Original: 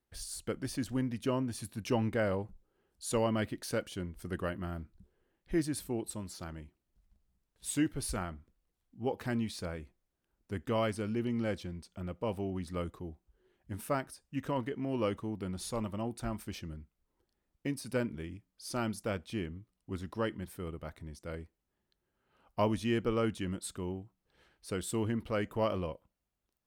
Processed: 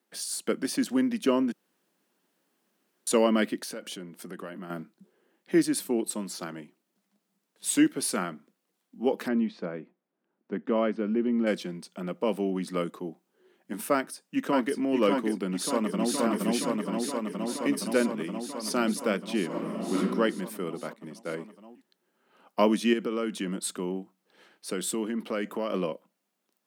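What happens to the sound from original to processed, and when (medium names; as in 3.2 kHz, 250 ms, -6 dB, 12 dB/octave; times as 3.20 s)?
1.52–3.07 s: room tone
3.62–4.70 s: compression 16:1, threshold -42 dBFS
9.28–11.47 s: tape spacing loss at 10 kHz 38 dB
13.93–14.78 s: echo throw 590 ms, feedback 65%, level -4 dB
15.46–16.17 s: echo throw 470 ms, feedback 80%, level -0.5 dB
19.47–19.97 s: reverb throw, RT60 0.97 s, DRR -7 dB
20.93–21.39 s: expander -45 dBFS
22.93–25.74 s: compression, threshold -34 dBFS
whole clip: steep high-pass 180 Hz 48 dB/octave; dynamic bell 810 Hz, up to -5 dB, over -50 dBFS, Q 2.3; trim +9 dB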